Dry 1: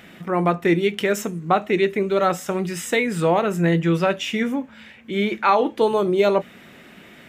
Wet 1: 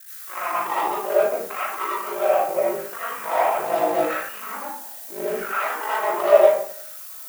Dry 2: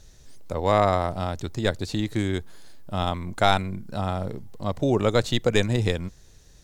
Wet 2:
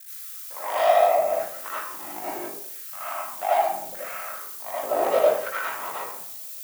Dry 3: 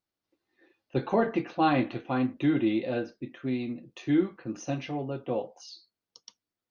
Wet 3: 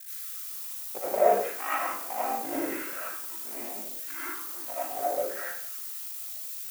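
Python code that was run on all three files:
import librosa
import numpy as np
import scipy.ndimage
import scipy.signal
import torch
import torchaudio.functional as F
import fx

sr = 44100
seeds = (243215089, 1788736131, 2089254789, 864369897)

y = scipy.ndimage.median_filter(x, 41, mode='constant')
y = scipy.signal.sosfilt(scipy.signal.cheby2(4, 40, 5600.0, 'lowpass', fs=sr, output='sos'), y)
y = fx.notch(y, sr, hz=470.0, q=12.0)
y = fx.dynamic_eq(y, sr, hz=110.0, q=1.8, threshold_db=-38.0, ratio=4.0, max_db=4)
y = fx.dmg_noise_colour(y, sr, seeds[0], colour='violet', level_db=-38.0)
y = 10.0 ** (-15.5 / 20.0) * (np.abs((y / 10.0 ** (-15.5 / 20.0) + 3.0) % 4.0 - 2.0) - 1.0)
y = fx.filter_lfo_highpass(y, sr, shape='saw_down', hz=0.76, low_hz=520.0, high_hz=1600.0, q=3.5)
y = y * np.sin(2.0 * np.pi * 26.0 * np.arange(len(y)) / sr)
y = fx.rev_freeverb(y, sr, rt60_s=0.62, hf_ratio=0.7, predelay_ms=40, drr_db=-9.5)
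y = F.gain(torch.from_numpy(y), -5.0).numpy()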